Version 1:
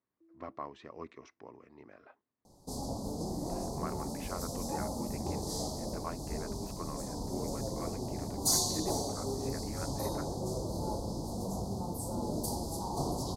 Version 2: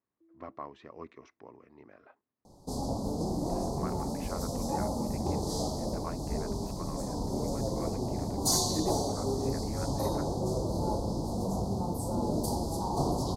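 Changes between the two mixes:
second sound +5.0 dB; master: add high shelf 4700 Hz -7 dB

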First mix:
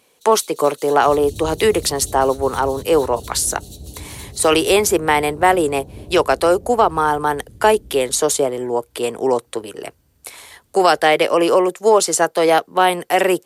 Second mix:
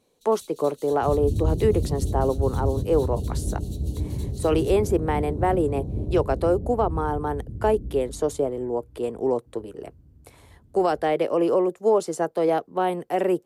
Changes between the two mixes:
speech -11.0 dB; second sound: remove synth low-pass 840 Hz, resonance Q 1.7; master: add tilt shelf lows +9 dB, about 910 Hz

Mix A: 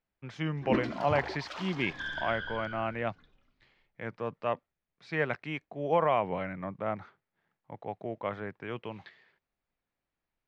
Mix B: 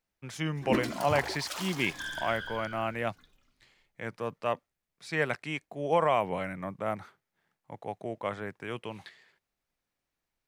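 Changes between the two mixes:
second sound -3.0 dB; master: remove air absorption 210 m

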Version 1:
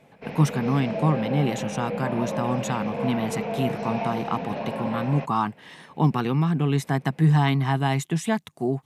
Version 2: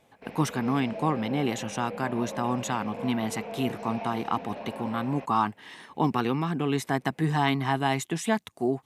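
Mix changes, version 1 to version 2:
background -7.5 dB; master: add bell 150 Hz -10.5 dB 0.6 oct

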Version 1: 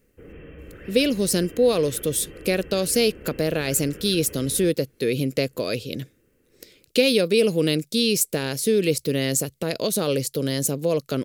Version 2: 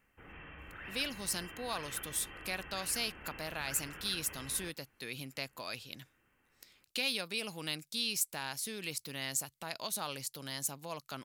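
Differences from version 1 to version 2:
speech -10.5 dB; master: add resonant low shelf 640 Hz -10 dB, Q 3

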